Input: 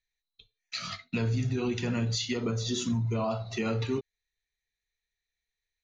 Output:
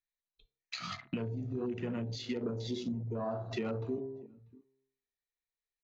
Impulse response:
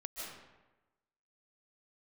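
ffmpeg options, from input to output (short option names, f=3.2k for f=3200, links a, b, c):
-filter_complex "[0:a]bandreject=f=66.66:t=h:w=4,bandreject=f=133.32:t=h:w=4,bandreject=f=199.98:t=h:w=4,bandreject=f=266.64:t=h:w=4,bandreject=f=333.3:t=h:w=4,bandreject=f=399.96:t=h:w=4,bandreject=f=466.62:t=h:w=4,bandreject=f=533.28:t=h:w=4,bandreject=f=599.94:t=h:w=4,bandreject=f=666.6:t=h:w=4,bandreject=f=733.26:t=h:w=4,bandreject=f=799.92:t=h:w=4,bandreject=f=866.58:t=h:w=4,bandreject=f=933.24:t=h:w=4,bandreject=f=999.9:t=h:w=4,bandreject=f=1.06656k:t=h:w=4,bandreject=f=1.13322k:t=h:w=4,bandreject=f=1.19988k:t=h:w=4,bandreject=f=1.26654k:t=h:w=4,bandreject=f=1.3332k:t=h:w=4,bandreject=f=1.39986k:t=h:w=4,bandreject=f=1.46652k:t=h:w=4,bandreject=f=1.53318k:t=h:w=4,bandreject=f=1.59984k:t=h:w=4,bandreject=f=1.6665k:t=h:w=4,bandreject=f=1.73316k:t=h:w=4,bandreject=f=1.79982k:t=h:w=4,bandreject=f=1.86648k:t=h:w=4,bandreject=f=1.93314k:t=h:w=4,bandreject=f=1.9998k:t=h:w=4,bandreject=f=2.06646k:t=h:w=4,bandreject=f=2.13312k:t=h:w=4,bandreject=f=2.19978k:t=h:w=4,bandreject=f=2.26644k:t=h:w=4,bandreject=f=2.3331k:t=h:w=4,acompressor=threshold=-41dB:ratio=16,asplit=2[a][b];[b]adelay=641.4,volume=-19dB,highshelf=f=4k:g=-14.4[c];[a][c]amix=inputs=2:normalize=0,afwtdn=0.00224,equalizer=f=470:w=0.37:g=9,volume=2dB"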